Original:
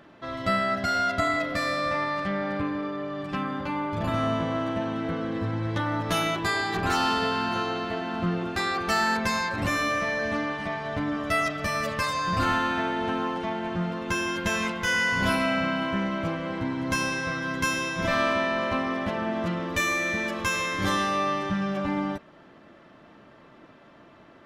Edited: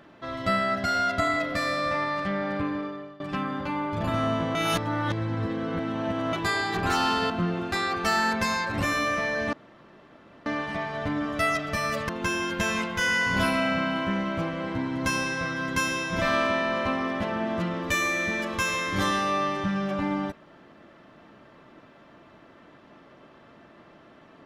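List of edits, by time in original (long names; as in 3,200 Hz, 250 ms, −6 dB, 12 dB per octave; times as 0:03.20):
0:02.76–0:03.20: fade out, to −20 dB
0:04.55–0:06.33: reverse
0:07.30–0:08.14: remove
0:10.37: splice in room tone 0.93 s
0:12.00–0:13.95: remove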